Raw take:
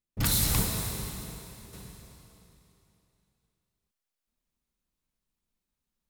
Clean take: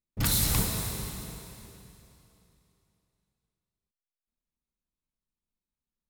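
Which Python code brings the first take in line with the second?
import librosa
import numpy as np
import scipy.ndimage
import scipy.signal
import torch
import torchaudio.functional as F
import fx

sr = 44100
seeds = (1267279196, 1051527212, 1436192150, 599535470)

y = fx.gain(x, sr, db=fx.steps((0.0, 0.0), (1.73, -6.0)))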